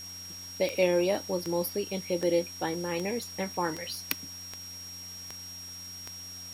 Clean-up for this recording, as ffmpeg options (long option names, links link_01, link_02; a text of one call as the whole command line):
ffmpeg -i in.wav -af "adeclick=threshold=4,bandreject=frequency=90.6:width_type=h:width=4,bandreject=frequency=181.2:width_type=h:width=4,bandreject=frequency=271.8:width_type=h:width=4,bandreject=frequency=5600:width=30,afwtdn=0.0032" out.wav